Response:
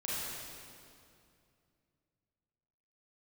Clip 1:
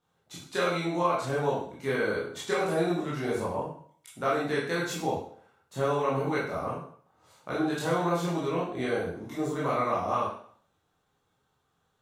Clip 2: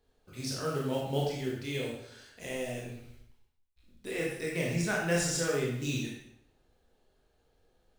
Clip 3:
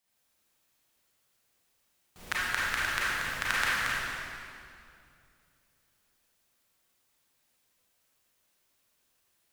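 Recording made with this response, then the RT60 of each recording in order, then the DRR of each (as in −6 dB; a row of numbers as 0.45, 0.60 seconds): 3; 0.55, 0.75, 2.5 seconds; −7.5, −3.5, −8.5 decibels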